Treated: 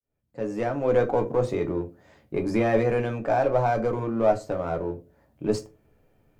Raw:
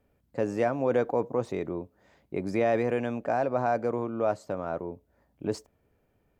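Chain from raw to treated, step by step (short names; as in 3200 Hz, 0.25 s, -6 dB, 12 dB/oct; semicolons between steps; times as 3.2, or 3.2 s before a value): opening faded in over 1.10 s; in parallel at -5 dB: one-sided clip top -34 dBFS; on the sum: reverb RT60 0.30 s, pre-delay 6 ms, DRR 4 dB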